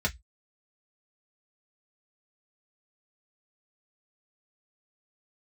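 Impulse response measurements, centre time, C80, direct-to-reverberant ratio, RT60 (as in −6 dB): 7 ms, 37.0 dB, −1.5 dB, 0.10 s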